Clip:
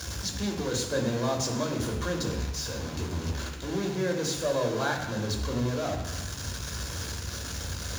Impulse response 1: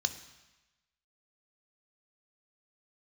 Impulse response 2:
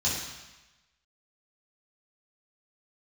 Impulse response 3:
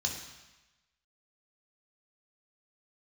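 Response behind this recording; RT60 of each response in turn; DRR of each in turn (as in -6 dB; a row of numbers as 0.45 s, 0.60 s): 3; 1.1 s, 1.1 s, 1.1 s; 8.5 dB, -8.0 dB, 0.0 dB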